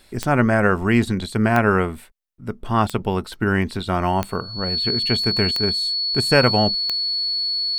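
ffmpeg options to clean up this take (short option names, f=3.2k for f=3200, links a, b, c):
-af "adeclick=t=4,bandreject=f=4.4k:w=30"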